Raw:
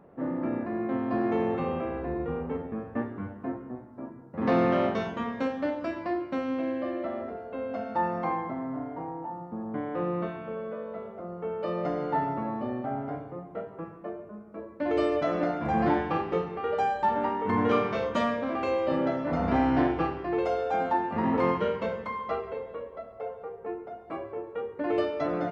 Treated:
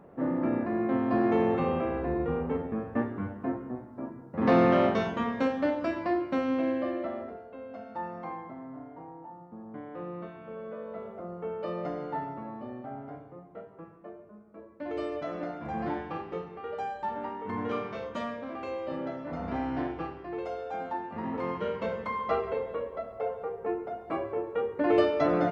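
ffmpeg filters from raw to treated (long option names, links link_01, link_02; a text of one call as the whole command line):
ffmpeg -i in.wav -af "volume=22.5dB,afade=type=out:start_time=6.69:duration=0.87:silence=0.281838,afade=type=in:start_time=10.31:duration=0.81:silence=0.375837,afade=type=out:start_time=11.12:duration=1.22:silence=0.421697,afade=type=in:start_time=21.48:duration=1:silence=0.251189" out.wav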